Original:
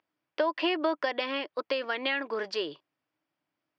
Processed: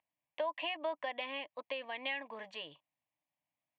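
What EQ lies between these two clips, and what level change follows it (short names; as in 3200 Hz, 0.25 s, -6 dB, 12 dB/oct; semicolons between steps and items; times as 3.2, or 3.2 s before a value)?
fixed phaser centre 1400 Hz, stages 6; -6.0 dB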